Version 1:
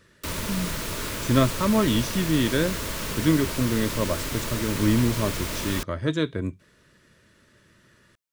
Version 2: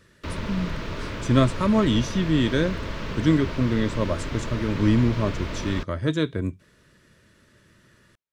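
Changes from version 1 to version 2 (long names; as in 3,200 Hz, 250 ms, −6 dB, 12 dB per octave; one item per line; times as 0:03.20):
background: add high-frequency loss of the air 220 metres
master: add low-shelf EQ 220 Hz +3 dB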